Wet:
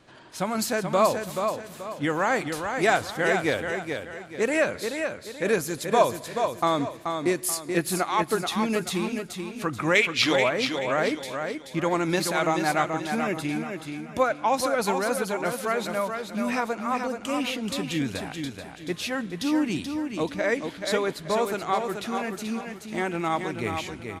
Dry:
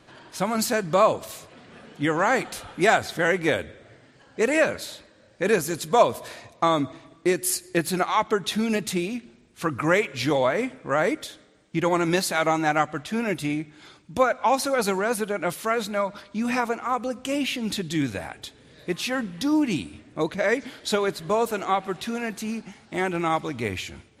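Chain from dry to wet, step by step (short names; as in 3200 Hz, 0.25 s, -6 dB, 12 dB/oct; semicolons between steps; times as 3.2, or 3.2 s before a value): 9.95–10.36 weighting filter D; on a send: feedback echo 0.431 s, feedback 35%, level -6 dB; on the sum: gain -2.5 dB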